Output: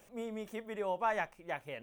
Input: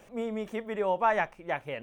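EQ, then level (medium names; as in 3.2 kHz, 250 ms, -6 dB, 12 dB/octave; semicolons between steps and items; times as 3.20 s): treble shelf 6 kHz +12 dB; -7.5 dB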